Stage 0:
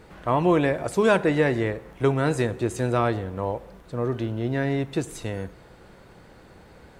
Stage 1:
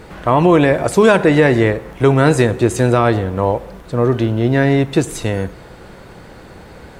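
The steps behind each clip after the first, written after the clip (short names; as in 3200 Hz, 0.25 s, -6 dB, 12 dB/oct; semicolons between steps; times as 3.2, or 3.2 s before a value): maximiser +12.5 dB; gain -1 dB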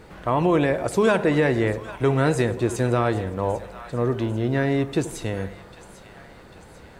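split-band echo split 700 Hz, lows 82 ms, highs 0.796 s, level -15 dB; gain -8.5 dB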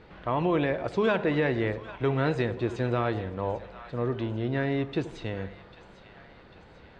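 ladder low-pass 4800 Hz, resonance 25%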